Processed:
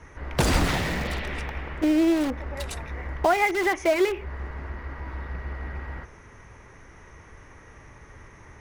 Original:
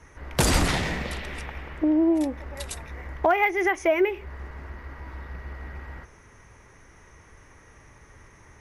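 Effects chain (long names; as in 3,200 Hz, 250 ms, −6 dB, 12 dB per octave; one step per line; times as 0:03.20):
in parallel at −4.5 dB: wrap-around overflow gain 25 dB
on the sum: high-shelf EQ 6,100 Hz −10 dB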